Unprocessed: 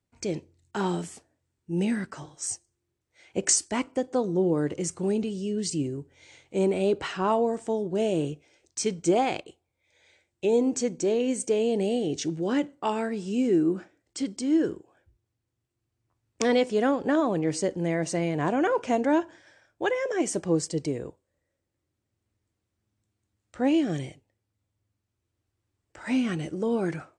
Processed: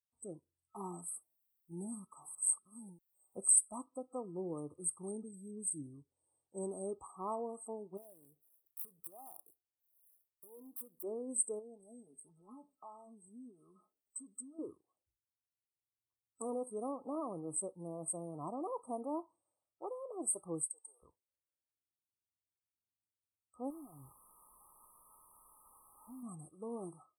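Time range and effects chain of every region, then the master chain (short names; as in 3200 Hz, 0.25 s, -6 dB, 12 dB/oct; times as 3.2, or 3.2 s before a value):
1.08–3.57 reverse delay 0.636 s, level -7.5 dB + mismatched tape noise reduction encoder only
7.97–11.04 switching dead time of 0.065 ms + compressor 4:1, threshold -36 dBFS
11.59–14.59 comb 4.7 ms, depth 79% + compressor 3:1, threshold -36 dBFS
20.63–21.03 HPF 720 Hz 24 dB/oct + comb 2.4 ms, depth 51%
23.7–26.23 compressor 5:1, threshold -30 dBFS + requantised 6-bit, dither triangular + tape spacing loss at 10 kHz 26 dB
whole clip: FFT band-reject 1300–8000 Hz; pre-emphasis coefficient 0.9; spectral noise reduction 12 dB; gain +2 dB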